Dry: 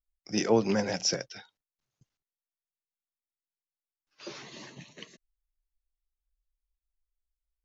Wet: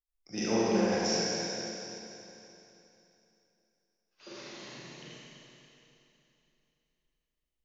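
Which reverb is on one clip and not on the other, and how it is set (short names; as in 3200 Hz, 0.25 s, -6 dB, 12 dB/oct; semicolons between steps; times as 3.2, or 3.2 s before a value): Schroeder reverb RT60 3.1 s, combs from 32 ms, DRR -8.5 dB; gain -9 dB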